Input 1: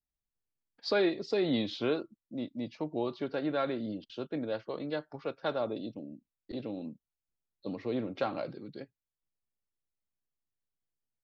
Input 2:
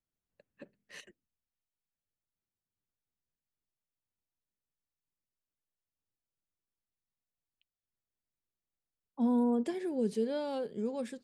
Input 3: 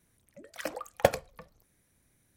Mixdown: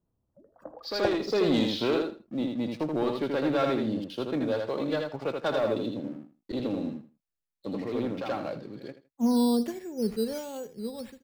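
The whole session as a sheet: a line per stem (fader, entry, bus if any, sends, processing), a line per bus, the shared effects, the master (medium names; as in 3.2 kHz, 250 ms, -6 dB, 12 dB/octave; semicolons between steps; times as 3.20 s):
-1.0 dB, 0.00 s, no send, echo send -4 dB, waveshaping leveller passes 2; auto duck -17 dB, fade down 1.90 s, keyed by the second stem
+1.0 dB, 0.00 s, no send, echo send -17 dB, decimation with a swept rate 8×, swing 60% 1.4 Hz; three bands expanded up and down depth 100%
-6.5 dB, 0.00 s, no send, echo send -11.5 dB, inverse Chebyshev low-pass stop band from 2.2 kHz, stop band 40 dB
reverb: none
echo: feedback delay 80 ms, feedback 20%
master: none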